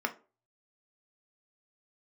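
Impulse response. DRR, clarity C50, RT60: 4.5 dB, 16.5 dB, 0.35 s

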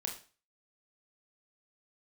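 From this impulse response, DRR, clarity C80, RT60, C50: 1.0 dB, 13.5 dB, 0.35 s, 8.5 dB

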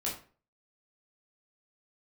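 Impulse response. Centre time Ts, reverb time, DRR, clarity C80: 31 ms, 0.40 s, -5.5 dB, 12.0 dB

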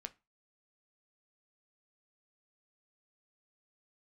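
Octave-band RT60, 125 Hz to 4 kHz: 0.30 s, 0.30 s, 0.25 s, 0.30 s, 0.25 s, 0.20 s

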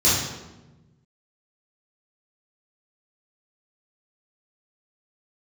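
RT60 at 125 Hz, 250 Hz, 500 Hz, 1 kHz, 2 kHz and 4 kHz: 1.9 s, 1.6 s, 1.2 s, 1.0 s, 0.85 s, 0.75 s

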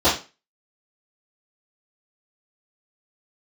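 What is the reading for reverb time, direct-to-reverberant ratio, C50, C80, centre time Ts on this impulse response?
0.30 s, -14.0 dB, 8.0 dB, 14.0 dB, 30 ms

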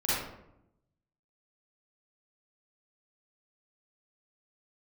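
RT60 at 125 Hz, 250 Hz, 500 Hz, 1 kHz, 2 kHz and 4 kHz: 1.2 s, 1.1 s, 0.85 s, 0.75 s, 0.60 s, 0.45 s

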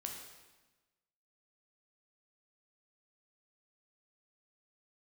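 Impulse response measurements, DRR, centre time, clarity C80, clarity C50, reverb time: 1.0 dB, 45 ms, 6.0 dB, 4.0 dB, 1.2 s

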